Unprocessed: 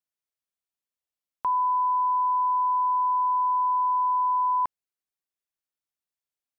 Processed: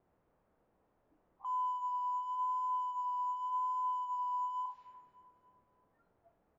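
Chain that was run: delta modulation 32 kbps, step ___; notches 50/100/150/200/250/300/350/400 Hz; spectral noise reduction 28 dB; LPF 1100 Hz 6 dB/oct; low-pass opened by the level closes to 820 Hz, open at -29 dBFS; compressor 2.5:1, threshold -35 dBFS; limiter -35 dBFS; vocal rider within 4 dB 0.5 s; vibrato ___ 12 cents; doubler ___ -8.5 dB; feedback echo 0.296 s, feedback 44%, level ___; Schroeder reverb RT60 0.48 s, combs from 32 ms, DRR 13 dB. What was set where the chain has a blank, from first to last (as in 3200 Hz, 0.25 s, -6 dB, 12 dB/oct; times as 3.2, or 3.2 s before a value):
-31 dBFS, 0.88 Hz, 28 ms, -16.5 dB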